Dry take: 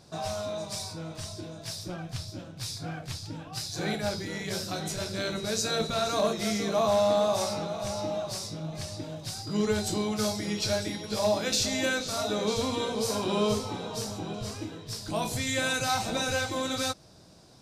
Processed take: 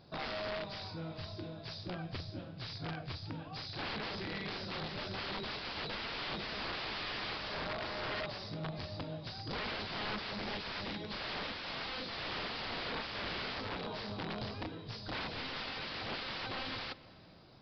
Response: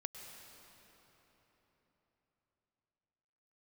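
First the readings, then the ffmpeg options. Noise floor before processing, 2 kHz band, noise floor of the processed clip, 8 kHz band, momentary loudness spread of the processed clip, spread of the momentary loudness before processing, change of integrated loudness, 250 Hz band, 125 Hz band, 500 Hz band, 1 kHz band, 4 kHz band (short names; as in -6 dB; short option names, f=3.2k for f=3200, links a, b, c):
-46 dBFS, -5.0 dB, -49 dBFS, -30.5 dB, 6 LU, 12 LU, -9.5 dB, -12.0 dB, -8.5 dB, -14.5 dB, -9.0 dB, -7.0 dB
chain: -filter_complex "[0:a]aeval=exprs='(mod(26.6*val(0)+1,2)-1)/26.6':c=same,aresample=11025,aresample=44100,asplit=2[a][b];[1:a]atrim=start_sample=2205,lowpass=4.9k[c];[b][c]afir=irnorm=-1:irlink=0,volume=-9.5dB[d];[a][d]amix=inputs=2:normalize=0,volume=-5.5dB"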